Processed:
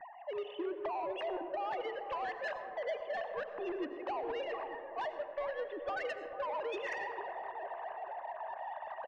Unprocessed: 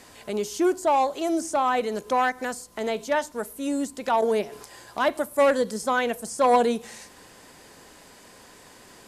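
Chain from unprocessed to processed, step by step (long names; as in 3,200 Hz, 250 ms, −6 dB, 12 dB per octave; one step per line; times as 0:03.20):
three sine waves on the formant tracks
low-pass that shuts in the quiet parts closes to 770 Hz, open at −21 dBFS
low-shelf EQ 440 Hz −5 dB
comb filter 1.1 ms, depth 67%
reversed playback
upward compression, threshold −24 dBFS
reversed playback
brickwall limiter −19 dBFS, peak gain reduction 9 dB
downward compressor 16 to 1, threshold −31 dBFS, peak gain reduction 9.5 dB
soft clipping −32 dBFS, distortion −15 dB
delay with a low-pass on its return 441 ms, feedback 46%, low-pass 1,200 Hz, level −9 dB
on a send at −9 dB: convolution reverb RT60 2.4 s, pre-delay 50 ms
on the sum: level −1 dB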